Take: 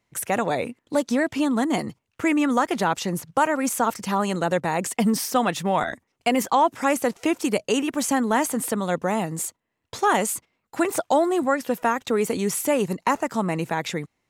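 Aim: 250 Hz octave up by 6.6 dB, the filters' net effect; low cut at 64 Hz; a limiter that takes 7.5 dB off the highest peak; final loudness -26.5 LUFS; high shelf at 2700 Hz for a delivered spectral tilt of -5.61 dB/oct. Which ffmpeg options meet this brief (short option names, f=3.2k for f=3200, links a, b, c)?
-af "highpass=64,equalizer=f=250:t=o:g=8,highshelf=f=2.7k:g=-4,volume=-3dB,alimiter=limit=-16.5dB:level=0:latency=1"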